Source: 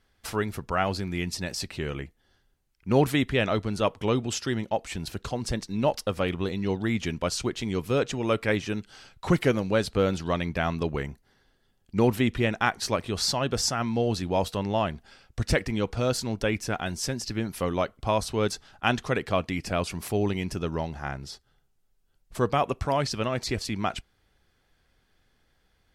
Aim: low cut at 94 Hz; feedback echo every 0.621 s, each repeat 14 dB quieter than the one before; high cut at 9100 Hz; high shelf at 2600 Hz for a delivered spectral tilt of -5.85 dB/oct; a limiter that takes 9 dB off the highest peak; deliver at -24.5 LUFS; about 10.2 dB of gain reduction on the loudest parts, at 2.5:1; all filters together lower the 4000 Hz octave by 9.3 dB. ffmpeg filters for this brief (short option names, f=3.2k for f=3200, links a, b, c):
-af "highpass=94,lowpass=9.1k,highshelf=f=2.6k:g=-8.5,equalizer=f=4k:t=o:g=-4.5,acompressor=threshold=-33dB:ratio=2.5,alimiter=level_in=1.5dB:limit=-24dB:level=0:latency=1,volume=-1.5dB,aecho=1:1:621|1242:0.2|0.0399,volume=13.5dB"